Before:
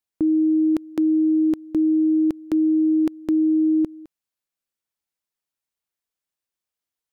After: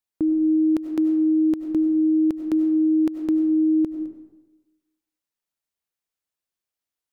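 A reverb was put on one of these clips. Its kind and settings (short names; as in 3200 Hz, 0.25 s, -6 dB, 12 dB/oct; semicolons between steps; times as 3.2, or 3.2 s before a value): digital reverb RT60 1.1 s, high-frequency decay 0.55×, pre-delay 55 ms, DRR 7.5 dB; gain -1.5 dB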